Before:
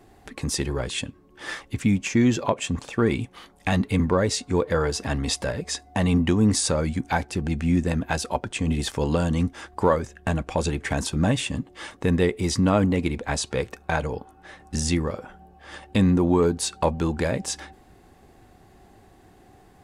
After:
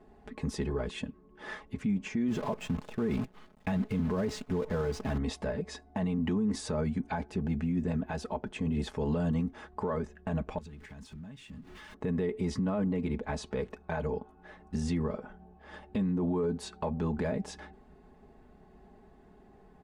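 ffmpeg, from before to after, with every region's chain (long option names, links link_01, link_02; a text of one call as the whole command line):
ffmpeg -i in.wav -filter_complex "[0:a]asettb=1/sr,asplit=3[link_01][link_02][link_03];[link_01]atrim=end=2.284[link_04];[link_02]atrim=start=2.28:end=5.18,asetpts=PTS-STARTPTS,afade=type=in:duration=0.004:curve=qsin,afade=type=out:start_time=2.896:duration=0.004:curve=qsin,acrusher=bits=6:dc=4:mix=0:aa=0.000001,equalizer=frequency=110:width_type=o:width=1.7:gain=5[link_05];[link_03]atrim=start=5.176[link_06];[link_04][link_05]acrossfade=duration=0.004:curve1=hsin:curve2=qsin[link_07];[link_07][link_06]acrossfade=duration=0.004:curve1=qsin:curve2=hsin,asettb=1/sr,asplit=3[link_08][link_09][link_10];[link_08]atrim=end=10.584[link_11];[link_09]atrim=start=10.58:end=11.94,asetpts=PTS-STARTPTS,afade=type=in:duration=0.004:curve=qsin,afade=type=out:start_time=1.356:duration=0.004:curve=qsin,aeval=exprs='val(0)+0.5*0.0188*sgn(val(0))':channel_layout=same,acompressor=threshold=-34dB:ratio=20:attack=3.2:release=140:knee=1:detection=peak,equalizer=frequency=550:width=0.65:gain=-11[link_12];[link_10]atrim=start=11.936[link_13];[link_11][link_12]acrossfade=duration=0.004:curve1=hsin:curve2=qsin[link_14];[link_14][link_13]acrossfade=duration=0.004:curve1=qsin:curve2=hsin,lowpass=frequency=1100:poles=1,aecho=1:1:4.7:0.69,alimiter=limit=-18.5dB:level=0:latency=1:release=45,volume=-4.5dB" out.wav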